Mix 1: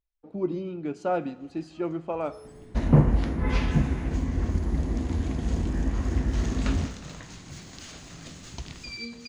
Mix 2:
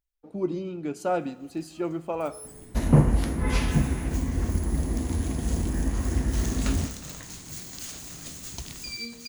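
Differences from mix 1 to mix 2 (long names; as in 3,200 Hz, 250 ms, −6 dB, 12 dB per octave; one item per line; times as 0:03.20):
first sound: send −10.0 dB
master: remove high-frequency loss of the air 130 metres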